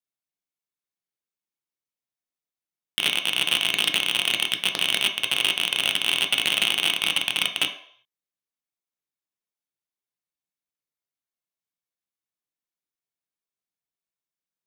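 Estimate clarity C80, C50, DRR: 13.0 dB, 9.5 dB, 3.0 dB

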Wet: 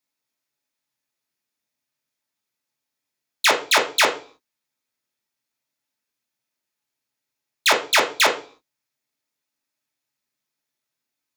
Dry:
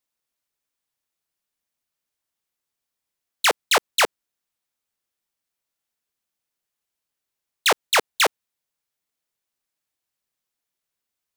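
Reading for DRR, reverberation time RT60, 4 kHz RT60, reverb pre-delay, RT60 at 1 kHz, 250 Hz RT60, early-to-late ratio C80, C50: 0.0 dB, 0.40 s, 0.45 s, 3 ms, 0.40 s, 0.50 s, 17.0 dB, 11.5 dB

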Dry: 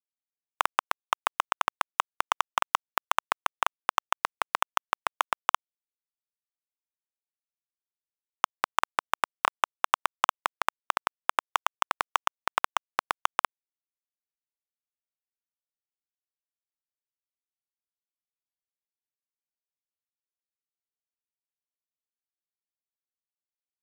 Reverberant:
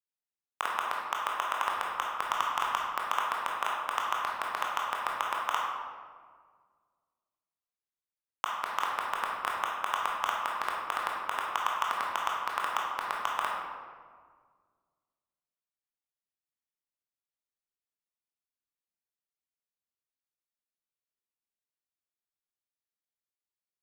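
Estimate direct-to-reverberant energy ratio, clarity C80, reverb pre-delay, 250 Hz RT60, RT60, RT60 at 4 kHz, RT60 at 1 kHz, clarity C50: −3.0 dB, 2.5 dB, 18 ms, 2.1 s, 1.7 s, 0.95 s, 1.6 s, 0.0 dB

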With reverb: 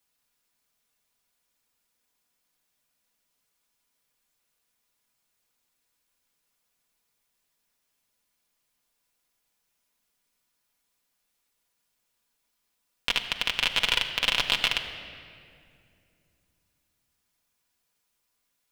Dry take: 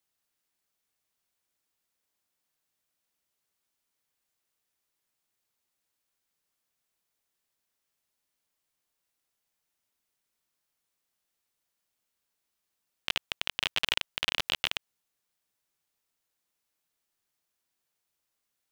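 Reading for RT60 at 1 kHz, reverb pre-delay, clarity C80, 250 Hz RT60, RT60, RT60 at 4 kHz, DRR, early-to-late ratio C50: 2.1 s, 4 ms, 9.5 dB, 3.4 s, 2.4 s, 1.6 s, 1.5 dB, 9.0 dB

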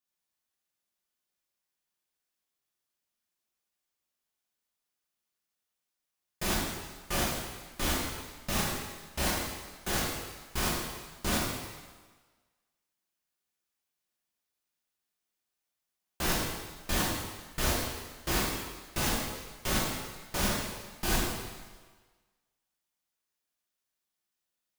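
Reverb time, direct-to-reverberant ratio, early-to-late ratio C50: 1.4 s, −6.0 dB, −0.5 dB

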